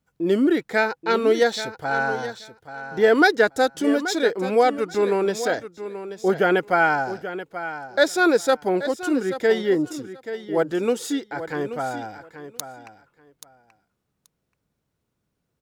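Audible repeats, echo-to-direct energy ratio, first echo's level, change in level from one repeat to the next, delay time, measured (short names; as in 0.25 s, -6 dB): 2, -12.0 dB, -12.0 dB, -16.0 dB, 0.831 s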